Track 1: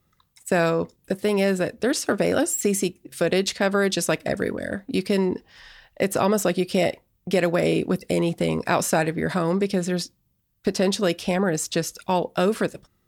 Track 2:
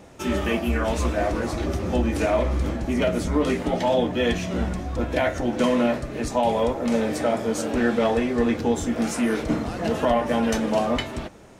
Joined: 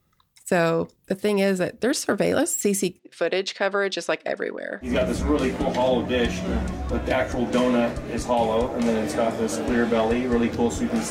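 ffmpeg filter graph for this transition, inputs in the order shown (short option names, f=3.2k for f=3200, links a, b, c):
-filter_complex "[0:a]asettb=1/sr,asplit=3[a][b][c];[a]atrim=end=2.994[d];[b]atrim=start=2.99:end=4.94,asetpts=PTS-STARTPTS,afade=t=in:d=0.004:c=qsin,afade=t=out:st=1.946:d=0.004:c=qsin,highpass=370,lowpass=4.6k[e];[c]atrim=start=4.936[f];[d][e]acrossfade=d=0.004:c1=hsin:c2=qsin[g];[g][f]acrossfade=d=0.004:c1=qsin:c2=hsin,apad=whole_dur=11.1,atrim=end=11.1,atrim=end=4.94,asetpts=PTS-STARTPTS[h];[1:a]atrim=start=2.86:end=9.16,asetpts=PTS-STARTPTS[i];[h][i]acrossfade=d=0.14:c1=tri:c2=tri"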